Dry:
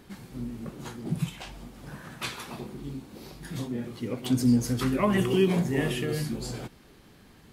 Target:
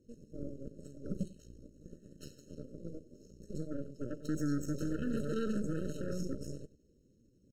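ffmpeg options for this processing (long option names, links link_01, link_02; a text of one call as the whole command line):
ffmpeg -i in.wav -filter_complex "[0:a]acrossover=split=450[link_01][link_02];[link_01]alimiter=limit=-22.5dB:level=0:latency=1:release=85[link_03];[link_02]bandpass=frequency=5600:width_type=q:width=4.9:csg=0[link_04];[link_03][link_04]amix=inputs=2:normalize=0,asetrate=52444,aresample=44100,atempo=0.840896,aeval=exprs='0.0841*(cos(1*acos(clip(val(0)/0.0841,-1,1)))-cos(1*PI/2))+0.0168*(cos(3*acos(clip(val(0)/0.0841,-1,1)))-cos(3*PI/2))+0.015*(cos(6*acos(clip(val(0)/0.0841,-1,1)))-cos(6*PI/2))':channel_layout=same,aecho=1:1:96:0.119,afftfilt=real='re*eq(mod(floor(b*sr/1024/630),2),0)':imag='im*eq(mod(floor(b*sr/1024/630),2),0)':win_size=1024:overlap=0.75,volume=-3.5dB" out.wav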